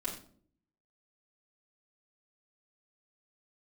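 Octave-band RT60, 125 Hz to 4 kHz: 0.80 s, 0.80 s, 0.65 s, 0.45 s, 0.35 s, 0.35 s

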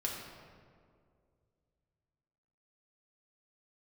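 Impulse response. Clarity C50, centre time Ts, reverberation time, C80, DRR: 2.0 dB, 74 ms, 2.2 s, 3.5 dB, -2.5 dB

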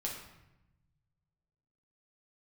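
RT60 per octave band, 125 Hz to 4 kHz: 2.2 s, 1.5 s, 0.95 s, 0.90 s, 0.85 s, 0.70 s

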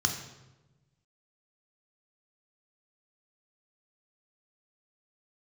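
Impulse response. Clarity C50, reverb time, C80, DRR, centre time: 7.5 dB, 1.1 s, 9.5 dB, 3.5 dB, 22 ms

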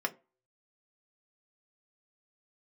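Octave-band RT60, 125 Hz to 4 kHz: 0.25 s, 0.30 s, 0.35 s, 0.30 s, 0.25 s, 0.15 s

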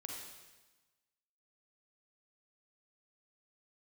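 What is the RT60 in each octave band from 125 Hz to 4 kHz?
1.3 s, 1.3 s, 1.2 s, 1.2 s, 1.2 s, 1.2 s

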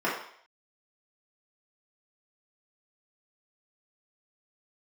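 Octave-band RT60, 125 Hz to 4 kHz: 0.40 s, 0.50 s, 0.60 s, 0.60 s, 0.60 s, 0.65 s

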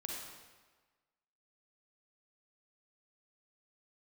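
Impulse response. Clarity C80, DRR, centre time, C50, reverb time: 2.0 dB, -2.0 dB, 80 ms, -1.0 dB, 1.4 s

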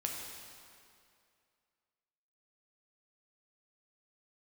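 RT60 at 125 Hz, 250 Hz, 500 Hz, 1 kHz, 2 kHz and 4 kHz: 2.2 s, 2.3 s, 2.4 s, 2.3 s, 2.2 s, 2.0 s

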